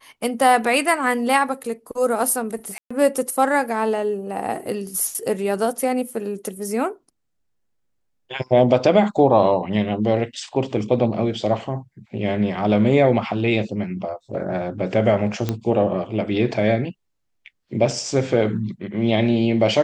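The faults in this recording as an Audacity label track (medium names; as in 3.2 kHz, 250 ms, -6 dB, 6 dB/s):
2.780000	2.900000	dropout 125 ms
15.490000	15.490000	pop -9 dBFS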